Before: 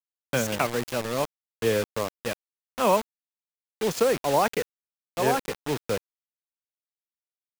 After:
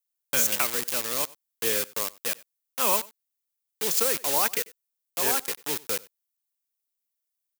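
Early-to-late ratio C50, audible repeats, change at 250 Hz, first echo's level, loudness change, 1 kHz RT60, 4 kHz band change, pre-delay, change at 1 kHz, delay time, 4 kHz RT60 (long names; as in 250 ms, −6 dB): no reverb audible, 1, −9.5 dB, −22.5 dB, +1.5 dB, no reverb audible, +4.0 dB, no reverb audible, −5.0 dB, 94 ms, no reverb audible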